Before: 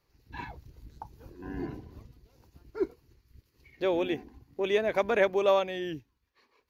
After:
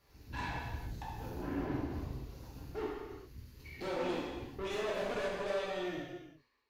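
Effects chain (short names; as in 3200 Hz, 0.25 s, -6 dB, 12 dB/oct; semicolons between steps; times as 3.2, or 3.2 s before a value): ending faded out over 2.18 s; compressor 2:1, threshold -45 dBFS, peak gain reduction 12.5 dB; tube stage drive 45 dB, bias 0.65; non-linear reverb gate 0.46 s falling, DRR -6.5 dB; gain +5.5 dB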